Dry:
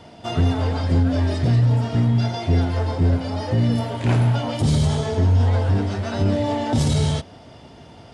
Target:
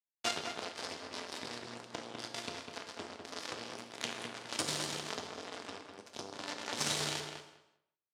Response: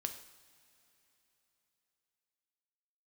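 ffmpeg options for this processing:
-filter_complex "[0:a]asplit=3[a][b][c];[a]afade=t=out:st=5.81:d=0.02[d];[b]equalizer=f=1.8k:t=o:w=2.5:g=-14.5,afade=t=in:st=5.81:d=0.02,afade=t=out:st=6.32:d=0.02[e];[c]afade=t=in:st=6.32:d=0.02[f];[d][e][f]amix=inputs=3:normalize=0,alimiter=limit=-17dB:level=0:latency=1:release=455,acompressor=threshold=-37dB:ratio=2,crystalizer=i=5.5:c=0,acrusher=bits=3:mix=0:aa=0.5,highpass=230,lowpass=6.6k,asplit=2[g][h];[h]adelay=201,lowpass=f=2.4k:p=1,volume=-5dB,asplit=2[i][j];[j]adelay=201,lowpass=f=2.4k:p=1,volume=0.18,asplit=2[k][l];[l]adelay=201,lowpass=f=2.4k:p=1,volume=0.18[m];[g][i][k][m]amix=inputs=4:normalize=0[n];[1:a]atrim=start_sample=2205,afade=t=out:st=0.43:d=0.01,atrim=end_sample=19404[o];[n][o]afir=irnorm=-1:irlink=0,volume=4dB"

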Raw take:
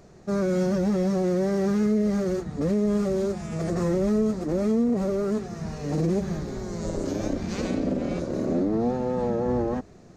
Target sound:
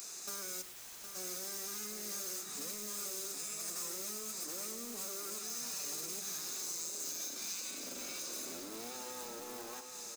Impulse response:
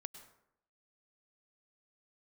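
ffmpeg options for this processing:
-filter_complex "[0:a]highpass=230,aderivative,aecho=1:1:0.8:0.38,acompressor=threshold=-59dB:ratio=12,asplit=2[a][b];[b]aeval=exprs='(mod(708*val(0)+1,2)-1)/708':c=same,volume=-6dB[c];[a][c]amix=inputs=2:normalize=0,crystalizer=i=2:c=0,asplit=3[d][e][f];[d]afade=t=out:st=0.61:d=0.02[g];[e]aeval=exprs='(mod(891*val(0)+1,2)-1)/891':c=same,afade=t=in:st=0.61:d=0.02,afade=t=out:st=1.14:d=0.02[h];[f]afade=t=in:st=1.14:d=0.02[i];[g][h][i]amix=inputs=3:normalize=0,aecho=1:1:763:0.398[j];[1:a]atrim=start_sample=2205,afade=t=out:st=0.17:d=0.01,atrim=end_sample=7938[k];[j][k]afir=irnorm=-1:irlink=0,volume=16.5dB"

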